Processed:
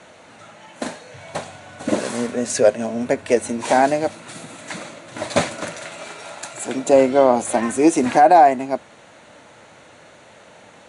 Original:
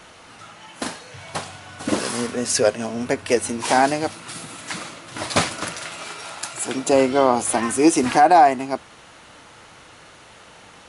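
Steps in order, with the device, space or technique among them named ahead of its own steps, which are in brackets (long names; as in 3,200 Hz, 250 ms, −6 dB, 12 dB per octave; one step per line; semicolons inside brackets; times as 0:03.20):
car door speaker (loudspeaker in its box 94–8,900 Hz, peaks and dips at 230 Hz +3 dB, 590 Hz +7 dB, 1,200 Hz −5 dB, 3,000 Hz −5 dB, 5,100 Hz −9 dB)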